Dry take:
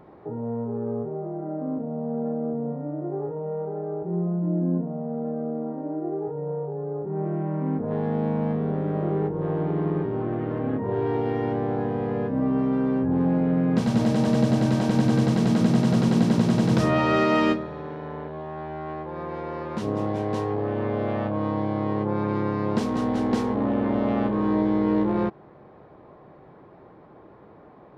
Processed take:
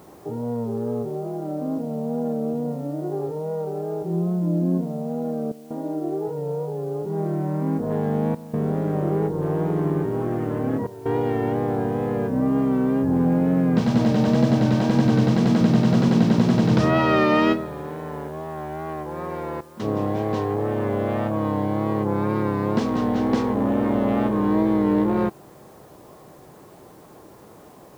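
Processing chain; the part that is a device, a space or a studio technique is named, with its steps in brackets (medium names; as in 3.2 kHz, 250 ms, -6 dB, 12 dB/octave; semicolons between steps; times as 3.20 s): worn cassette (low-pass 6.4 kHz; wow and flutter; level dips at 5.52/8.35/10.87/19.61 s, 184 ms -16 dB; white noise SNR 36 dB); trim +2.5 dB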